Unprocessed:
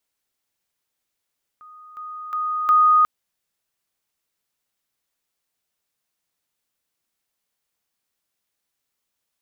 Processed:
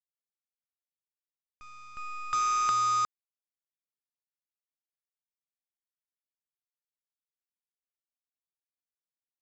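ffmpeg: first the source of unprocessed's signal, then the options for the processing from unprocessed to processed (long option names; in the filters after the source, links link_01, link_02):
-f lavfi -i "aevalsrc='pow(10,(-41.5+10*floor(t/0.36))/20)*sin(2*PI*1240*t)':duration=1.44:sample_rate=44100"
-af "lowshelf=frequency=100:gain=-8.5,acompressor=threshold=-26dB:ratio=8,aresample=16000,acrusher=bits=6:dc=4:mix=0:aa=0.000001,aresample=44100"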